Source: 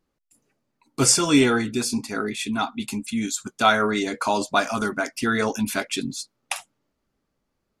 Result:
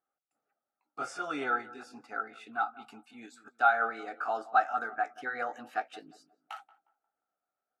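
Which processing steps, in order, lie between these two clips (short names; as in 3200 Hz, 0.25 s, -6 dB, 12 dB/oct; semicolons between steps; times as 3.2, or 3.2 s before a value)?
gliding pitch shift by +2.5 st starting unshifted; double band-pass 1000 Hz, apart 0.75 oct; tape echo 0.178 s, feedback 40%, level -16 dB, low-pass 1000 Hz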